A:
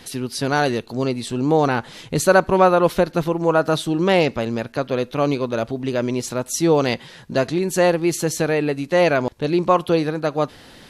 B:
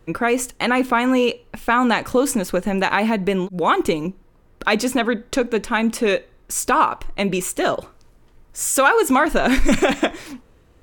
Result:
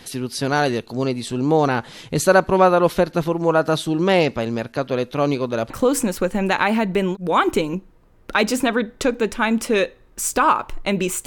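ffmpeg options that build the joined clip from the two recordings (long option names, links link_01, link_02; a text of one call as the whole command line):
ffmpeg -i cue0.wav -i cue1.wav -filter_complex "[0:a]apad=whole_dur=11.26,atrim=end=11.26,atrim=end=5.702[link_01];[1:a]atrim=start=2.018:end=7.58[link_02];[link_01][link_02]acrossfade=duration=0.004:curve1=hsin:curve2=hsin" out.wav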